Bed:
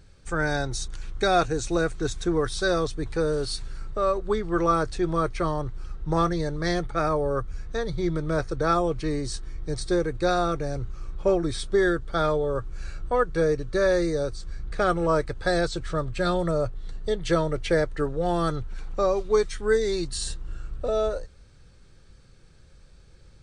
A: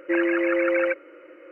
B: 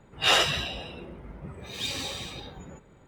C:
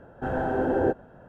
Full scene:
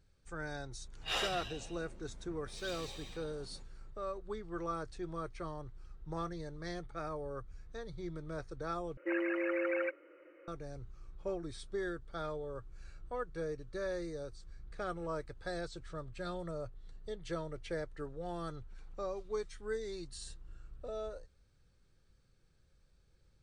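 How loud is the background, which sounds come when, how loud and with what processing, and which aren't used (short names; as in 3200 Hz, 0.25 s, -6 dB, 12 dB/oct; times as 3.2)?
bed -16.5 dB
0.84 add B -14.5 dB
8.97 replace with A -12 dB
not used: C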